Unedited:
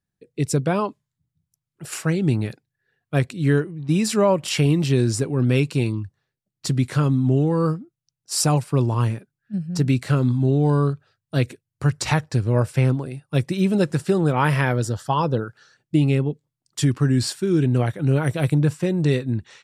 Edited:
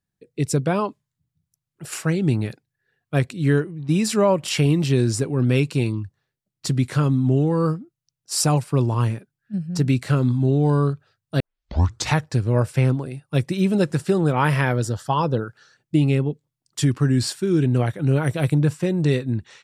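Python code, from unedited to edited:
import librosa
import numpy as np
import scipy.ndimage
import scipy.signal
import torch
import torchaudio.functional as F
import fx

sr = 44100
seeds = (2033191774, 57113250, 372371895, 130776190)

y = fx.edit(x, sr, fx.tape_start(start_s=11.4, length_s=0.69), tone=tone)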